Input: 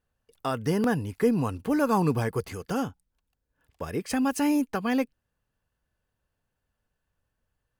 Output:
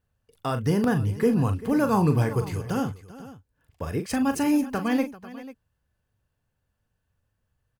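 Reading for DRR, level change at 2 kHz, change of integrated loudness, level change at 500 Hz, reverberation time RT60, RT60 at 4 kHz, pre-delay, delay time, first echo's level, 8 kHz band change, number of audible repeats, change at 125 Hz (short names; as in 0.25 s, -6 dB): none, +0.5 dB, +2.5 dB, +1.0 dB, none, none, none, 40 ms, -9.0 dB, +0.5 dB, 3, +6.5 dB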